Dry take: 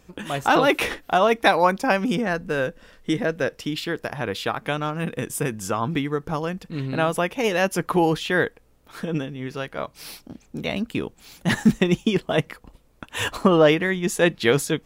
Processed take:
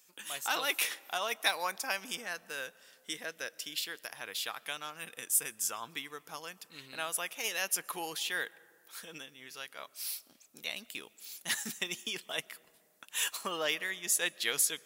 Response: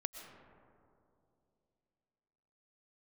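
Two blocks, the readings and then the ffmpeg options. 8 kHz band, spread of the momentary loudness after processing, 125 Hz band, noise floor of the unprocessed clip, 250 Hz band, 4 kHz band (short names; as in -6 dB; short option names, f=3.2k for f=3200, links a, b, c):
+2.0 dB, 15 LU, -31.5 dB, -56 dBFS, -27.0 dB, -5.0 dB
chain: -filter_complex "[0:a]aderivative,asplit=2[a][b];[1:a]atrim=start_sample=2205[c];[b][c]afir=irnorm=-1:irlink=0,volume=-14dB[d];[a][d]amix=inputs=2:normalize=0"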